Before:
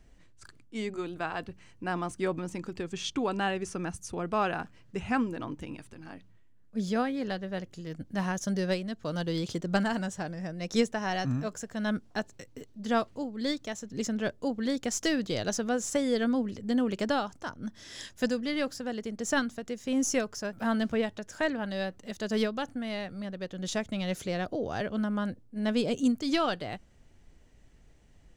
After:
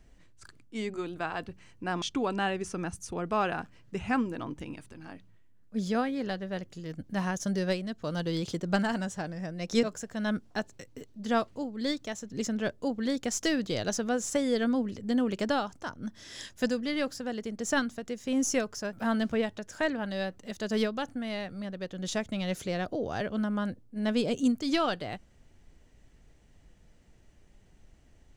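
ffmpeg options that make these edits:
-filter_complex "[0:a]asplit=3[s0][s1][s2];[s0]atrim=end=2.022[s3];[s1]atrim=start=3.028:end=10.842[s4];[s2]atrim=start=11.428[s5];[s3][s4]acrossfade=d=0.004:c1=hsin:c2=hsin[s6];[s6][s5]acrossfade=d=0.004:c1=hsin:c2=hsin"

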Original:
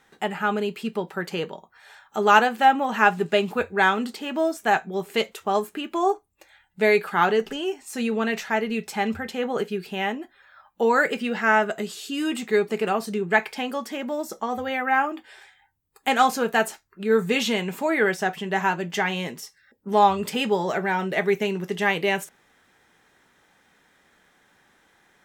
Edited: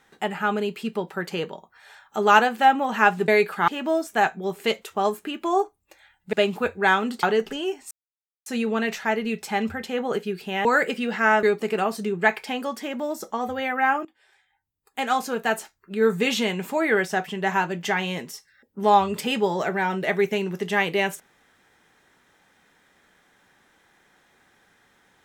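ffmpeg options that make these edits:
-filter_complex "[0:a]asplit=9[s0][s1][s2][s3][s4][s5][s6][s7][s8];[s0]atrim=end=3.282[s9];[s1]atrim=start=6.828:end=7.232[s10];[s2]atrim=start=4.178:end=6.832[s11];[s3]atrim=start=3.278:end=4.182[s12];[s4]atrim=start=7.228:end=7.91,asetpts=PTS-STARTPTS,afade=t=out:st=0.678:d=0.004:c=hsin,apad=pad_dur=0.55[s13];[s5]atrim=start=7.91:end=10.102,asetpts=PTS-STARTPTS,afade=t=in:d=0.004:c=hsin[s14];[s6]atrim=start=10.878:end=11.662[s15];[s7]atrim=start=12.518:end=15.14,asetpts=PTS-STARTPTS,afade=t=out:st=2.618:d=0.004:c=hsin:silence=0.11885[s16];[s8]atrim=start=15.14,asetpts=PTS-STARTPTS,afade=t=in:d=2.01:silence=0.11885[s17];[s9][s10]acrossfade=d=0.004:c1=hsin:c2=hsin[s18];[s18][s11]acrossfade=d=0.004:c1=hsin:c2=hsin[s19];[s19][s12]acrossfade=d=0.004:c1=hsin:c2=hsin[s20];[s13][s14]concat=n=2:v=0:a=1[s21];[s20][s21]acrossfade=d=0.004:c1=hsin:c2=hsin[s22];[s22][s15]acrossfade=d=0.004:c1=hsin:c2=hsin[s23];[s16][s17]concat=n=2:v=0:a=1[s24];[s23][s24]acrossfade=d=0.004:c1=hsin:c2=hsin"

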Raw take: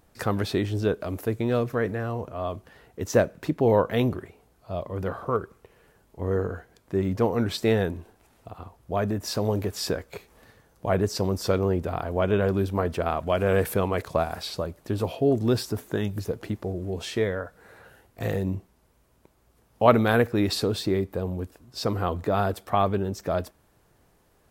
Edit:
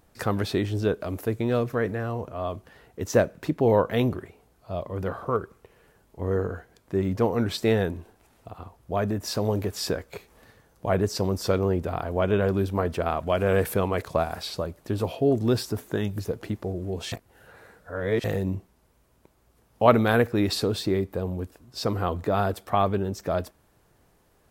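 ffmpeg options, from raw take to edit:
-filter_complex "[0:a]asplit=3[s0][s1][s2];[s0]atrim=end=17.122[s3];[s1]atrim=start=17.118:end=18.242,asetpts=PTS-STARTPTS,areverse[s4];[s2]atrim=start=18.238[s5];[s3][s4]acrossfade=d=0.004:c1=hsin:c2=hsin[s6];[s6][s5]acrossfade=d=0.004:c1=hsin:c2=hsin"

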